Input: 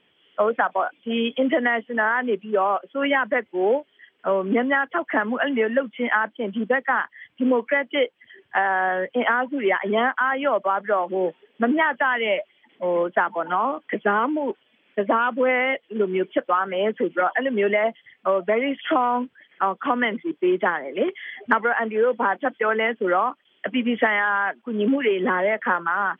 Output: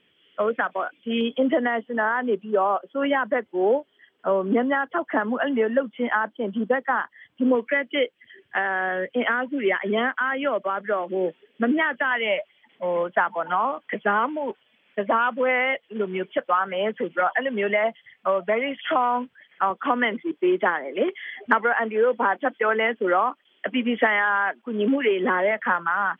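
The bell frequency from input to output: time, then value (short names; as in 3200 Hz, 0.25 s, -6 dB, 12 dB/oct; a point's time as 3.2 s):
bell -7.5 dB 0.86 oct
830 Hz
from 1.21 s 2300 Hz
from 7.55 s 880 Hz
from 12.11 s 320 Hz
from 19.7 s 130 Hz
from 25.51 s 390 Hz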